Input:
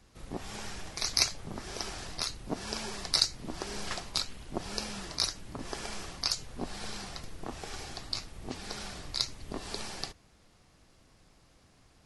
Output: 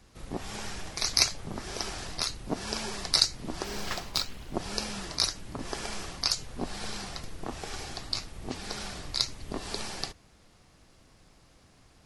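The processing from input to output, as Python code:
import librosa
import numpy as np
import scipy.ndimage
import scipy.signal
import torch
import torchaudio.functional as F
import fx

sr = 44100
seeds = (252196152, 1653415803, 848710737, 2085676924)

y = fx.resample_linear(x, sr, factor=2, at=(3.64, 4.54))
y = y * 10.0 ** (3.0 / 20.0)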